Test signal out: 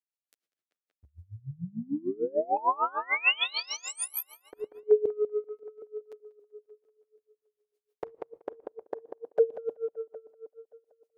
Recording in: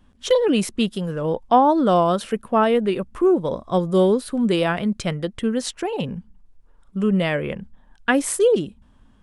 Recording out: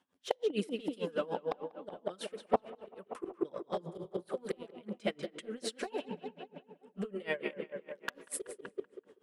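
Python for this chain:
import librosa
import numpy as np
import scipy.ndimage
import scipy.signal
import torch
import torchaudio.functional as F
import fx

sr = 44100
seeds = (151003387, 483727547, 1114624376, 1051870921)

p1 = scipy.signal.sosfilt(scipy.signal.butter(2, 360.0, 'highpass', fs=sr, output='sos'), x)
p2 = fx.rotary(p1, sr, hz=0.6)
p3 = fx.level_steps(p2, sr, step_db=23)
p4 = p2 + F.gain(torch.from_numpy(p3), 0.0).numpy()
p5 = fx.env_flanger(p4, sr, rest_ms=11.1, full_db=-16.0)
p6 = fx.dynamic_eq(p5, sr, hz=6500.0, q=1.5, threshold_db=-47.0, ratio=4.0, max_db=-7)
p7 = fx.gate_flip(p6, sr, shuts_db=-12.0, range_db=-29)
p8 = p7 + fx.echo_tape(p7, sr, ms=191, feedback_pct=67, wet_db=-6.5, lp_hz=3100.0, drive_db=9.0, wow_cents=17, dry=0)
p9 = fx.room_shoebox(p8, sr, seeds[0], volume_m3=3400.0, walls='furnished', distance_m=0.4)
y = p9 * 10.0 ** (-24 * (0.5 - 0.5 * np.cos(2.0 * np.pi * 6.7 * np.arange(len(p9)) / sr)) / 20.0)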